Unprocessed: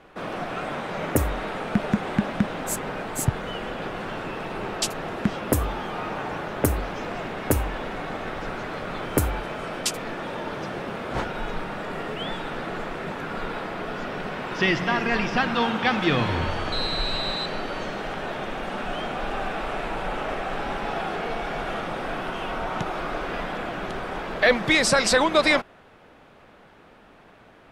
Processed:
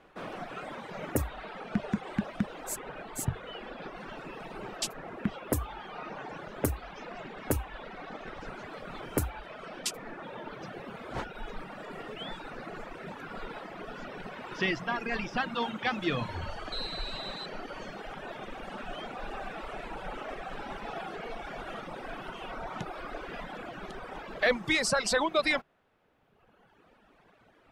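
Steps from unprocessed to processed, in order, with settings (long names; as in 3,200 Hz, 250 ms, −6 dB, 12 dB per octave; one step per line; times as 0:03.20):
mains-hum notches 50/100/150 Hz
reverb reduction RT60 1.6 s
level −7 dB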